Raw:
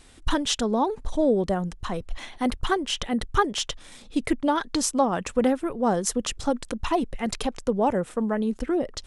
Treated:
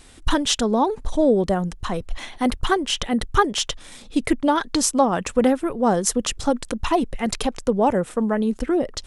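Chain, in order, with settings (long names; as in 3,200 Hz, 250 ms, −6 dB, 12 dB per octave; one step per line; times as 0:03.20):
high-shelf EQ 10,000 Hz +3.5 dB
level +4 dB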